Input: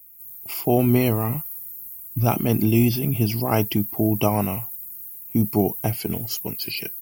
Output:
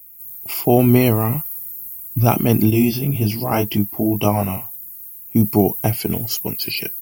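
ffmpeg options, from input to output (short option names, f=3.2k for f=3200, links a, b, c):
-filter_complex "[0:a]asettb=1/sr,asplit=3[a][b][c];[a]atrim=end=2.704[d];[b]atrim=start=2.7:end=5.36,asetpts=PTS-STARTPTS,afade=t=in:d=0.004:c=qsin,afade=t=out:st=2.656:d=0.004:c=qsin,flanger=delay=19.5:depth=2.9:speed=1.9[e];[c]atrim=start=5.356[f];[d][e]acrossfade=d=0.004:c1=hsin:c2=qsin[g];[g][f]acrossfade=d=0.004:c1=qsin:c2=hsin,volume=5dB"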